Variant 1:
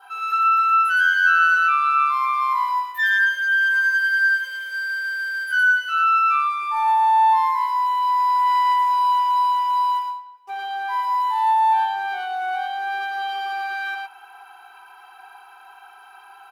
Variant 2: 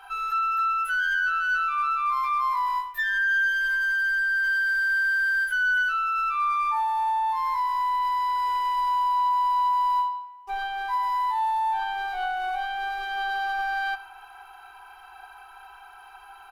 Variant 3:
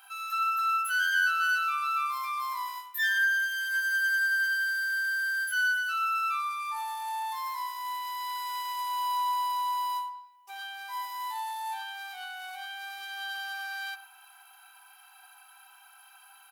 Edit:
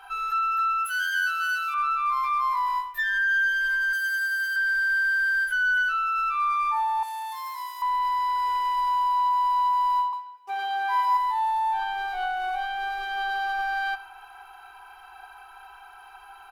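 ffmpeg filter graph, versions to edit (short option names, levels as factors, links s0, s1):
-filter_complex "[2:a]asplit=3[s0][s1][s2];[1:a]asplit=5[s3][s4][s5][s6][s7];[s3]atrim=end=0.862[s8];[s0]atrim=start=0.858:end=1.742[s9];[s4]atrim=start=1.738:end=3.932[s10];[s1]atrim=start=3.928:end=4.562[s11];[s5]atrim=start=4.558:end=7.032[s12];[s2]atrim=start=7.028:end=7.822[s13];[s6]atrim=start=7.818:end=10.132[s14];[0:a]atrim=start=10.128:end=11.172[s15];[s7]atrim=start=11.168[s16];[s8][s9]acrossfade=d=0.004:c1=hsin:c2=hsin[s17];[s17][s10]acrossfade=d=0.004:c1=hsin:c2=hsin[s18];[s18][s11]acrossfade=d=0.004:c1=hsin:c2=hsin[s19];[s19][s12]acrossfade=d=0.004:c1=hsin:c2=hsin[s20];[s20][s13]acrossfade=d=0.004:c1=hsin:c2=hsin[s21];[s21][s14]acrossfade=d=0.004:c1=hsin:c2=hsin[s22];[s22][s15]acrossfade=d=0.004:c1=hsin:c2=hsin[s23];[s23][s16]acrossfade=d=0.004:c1=hsin:c2=hsin"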